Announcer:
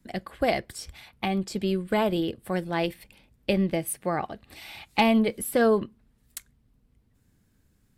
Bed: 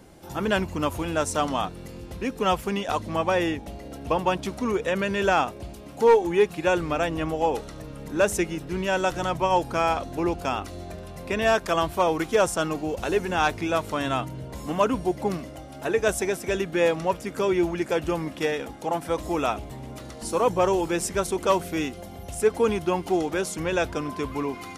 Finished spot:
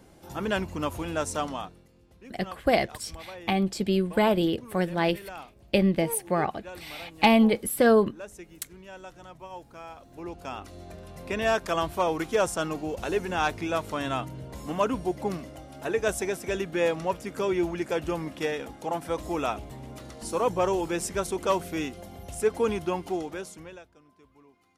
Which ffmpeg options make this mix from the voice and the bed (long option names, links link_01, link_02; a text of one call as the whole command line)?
ffmpeg -i stem1.wav -i stem2.wav -filter_complex "[0:a]adelay=2250,volume=2dB[link_01];[1:a]volume=12.5dB,afade=type=out:start_time=1.33:duration=0.54:silence=0.158489,afade=type=in:start_time=9.97:duration=1.33:silence=0.149624,afade=type=out:start_time=22.82:duration=1.03:silence=0.0530884[link_02];[link_01][link_02]amix=inputs=2:normalize=0" out.wav